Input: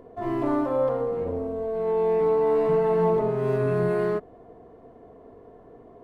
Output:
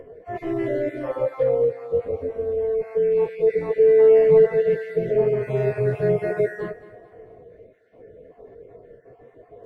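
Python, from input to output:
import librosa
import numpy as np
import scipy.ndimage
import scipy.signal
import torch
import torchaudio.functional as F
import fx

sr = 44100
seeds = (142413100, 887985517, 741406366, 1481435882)

y = fx.spec_dropout(x, sr, seeds[0], share_pct=37)
y = fx.graphic_eq(y, sr, hz=(125, 250, 500, 1000, 2000), db=(5, -8, 10, -9, 10))
y = fx.stretch_vocoder_free(y, sr, factor=1.6)
y = fx.echo_thinned(y, sr, ms=218, feedback_pct=44, hz=230.0, wet_db=-15.5)
y = y * 10.0 ** (2.5 / 20.0)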